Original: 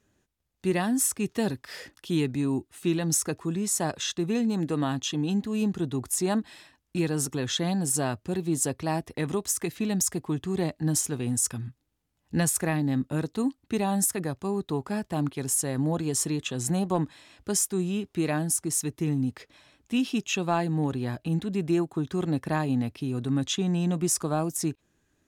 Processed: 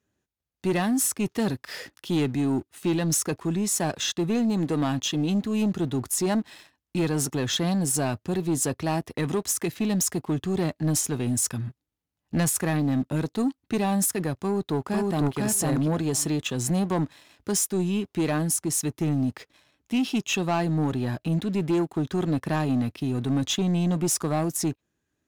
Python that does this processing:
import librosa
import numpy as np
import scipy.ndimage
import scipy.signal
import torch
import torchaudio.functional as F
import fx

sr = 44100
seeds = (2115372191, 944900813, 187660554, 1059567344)

y = fx.echo_throw(x, sr, start_s=14.38, length_s=0.99, ms=500, feedback_pct=10, wet_db=-1.0)
y = scipy.signal.sosfilt(scipy.signal.butter(2, 53.0, 'highpass', fs=sr, output='sos'), y)
y = fx.peak_eq(y, sr, hz=8400.0, db=-3.0, octaves=0.35)
y = fx.leveller(y, sr, passes=2)
y = y * 10.0 ** (-3.5 / 20.0)